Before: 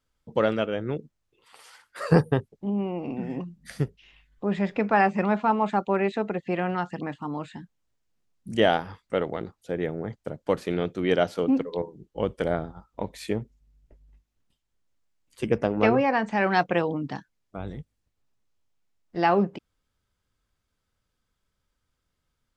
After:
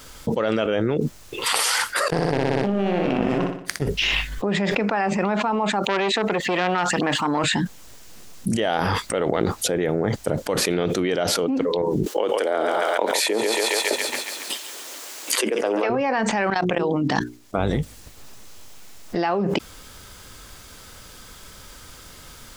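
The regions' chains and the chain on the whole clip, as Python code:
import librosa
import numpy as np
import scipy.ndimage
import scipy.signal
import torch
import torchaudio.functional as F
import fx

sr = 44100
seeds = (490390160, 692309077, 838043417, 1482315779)

y = fx.chain(x, sr, fx.power_curve(exponent=2.0),
    fx.room_flutter(wall_m=10.4, rt60_s=0.61), at=(2.08, 3.82))
y = fx.chain(y, sr, fx.low_shelf(hz=350.0, db=-8.5),
    fx.transformer_sat(knee_hz=1400.0), at=(5.88, 7.44))
y = fx.chain(y, sr, fx.highpass(hz=320.0, slope=24),
    fx.echo_thinned(ms=138, feedback_pct=61, hz=590.0, wet_db=-13.0),
    fx.band_squash(depth_pct=40), at=(12.06, 15.9))
y = fx.chain(y, sr, fx.level_steps(step_db=21),
    fx.hum_notches(base_hz=60, count=7), at=(16.5, 17.73))
y = fx.bass_treble(y, sr, bass_db=-5, treble_db=5)
y = fx.env_flatten(y, sr, amount_pct=100)
y = y * 10.0 ** (-4.0 / 20.0)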